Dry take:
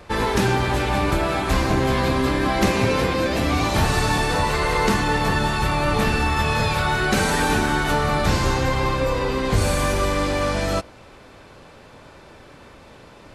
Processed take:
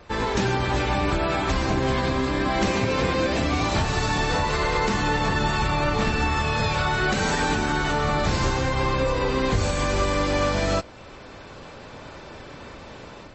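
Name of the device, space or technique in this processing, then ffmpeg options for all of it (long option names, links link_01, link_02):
low-bitrate web radio: -af "dynaudnorm=framelen=600:gausssize=3:maxgain=8.5dB,alimiter=limit=-9dB:level=0:latency=1:release=333,volume=-3.5dB" -ar 32000 -c:a libmp3lame -b:a 32k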